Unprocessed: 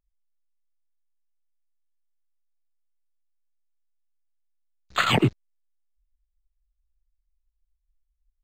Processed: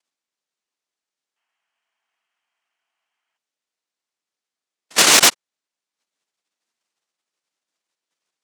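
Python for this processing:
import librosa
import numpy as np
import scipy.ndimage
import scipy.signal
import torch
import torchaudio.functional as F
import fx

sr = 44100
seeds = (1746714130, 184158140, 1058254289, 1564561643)

p1 = fx.noise_vocoder(x, sr, seeds[0], bands=1)
p2 = fx.spec_box(p1, sr, start_s=1.36, length_s=2.01, low_hz=640.0, high_hz=3300.0, gain_db=12)
p3 = fx.fold_sine(p2, sr, drive_db=11, ceiling_db=-6.0)
p4 = p2 + (p3 * 10.0 ** (-4.0 / 20.0))
y = scipy.signal.sosfilt(scipy.signal.butter(2, 220.0, 'highpass', fs=sr, output='sos'), p4)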